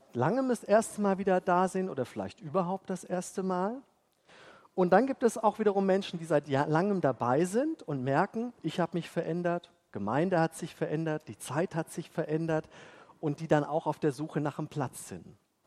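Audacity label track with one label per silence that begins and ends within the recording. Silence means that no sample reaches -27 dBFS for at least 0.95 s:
3.700000	4.780000	silence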